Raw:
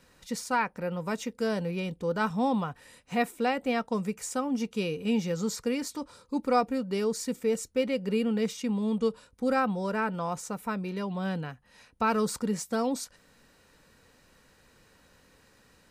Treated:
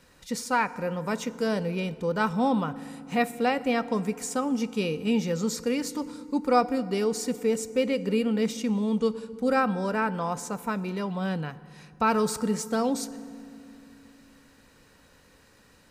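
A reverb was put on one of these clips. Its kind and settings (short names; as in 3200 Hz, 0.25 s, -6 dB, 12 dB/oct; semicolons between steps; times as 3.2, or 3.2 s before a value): FDN reverb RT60 2.4 s, low-frequency decay 1.6×, high-frequency decay 0.6×, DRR 15 dB; gain +2.5 dB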